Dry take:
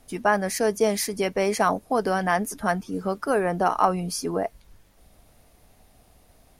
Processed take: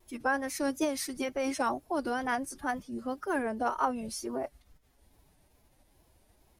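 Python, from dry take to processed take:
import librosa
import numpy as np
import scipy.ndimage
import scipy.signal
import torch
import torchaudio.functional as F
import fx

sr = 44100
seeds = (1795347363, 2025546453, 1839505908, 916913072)

y = fx.pitch_keep_formants(x, sr, semitones=5.0)
y = fx.wow_flutter(y, sr, seeds[0], rate_hz=2.1, depth_cents=96.0)
y = y * 10.0 ** (-8.0 / 20.0)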